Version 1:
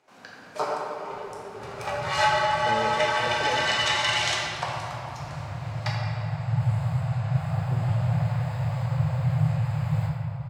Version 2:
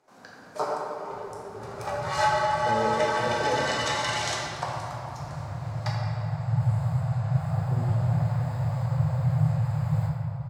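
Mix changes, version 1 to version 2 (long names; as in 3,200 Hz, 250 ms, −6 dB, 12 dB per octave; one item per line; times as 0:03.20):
speech: send +7.5 dB
master: add parametric band 2,700 Hz −9 dB 1.1 octaves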